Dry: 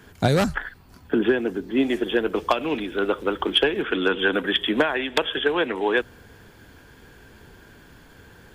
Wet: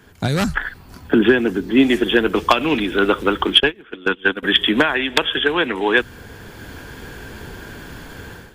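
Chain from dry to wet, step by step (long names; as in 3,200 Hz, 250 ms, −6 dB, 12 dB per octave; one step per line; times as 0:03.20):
0:03.60–0:04.43: noise gate −19 dBFS, range −23 dB
dynamic equaliser 560 Hz, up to −7 dB, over −35 dBFS, Q 0.99
automatic gain control gain up to 13.5 dB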